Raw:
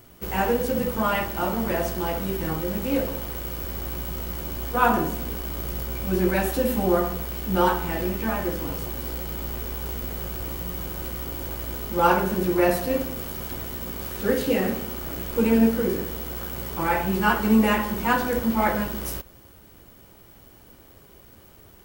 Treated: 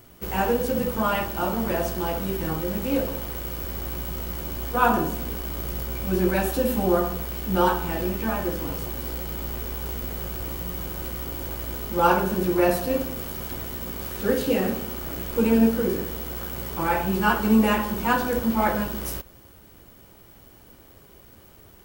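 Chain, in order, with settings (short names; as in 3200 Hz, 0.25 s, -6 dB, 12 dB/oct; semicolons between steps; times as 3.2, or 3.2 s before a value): dynamic EQ 2000 Hz, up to -5 dB, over -47 dBFS, Q 5.3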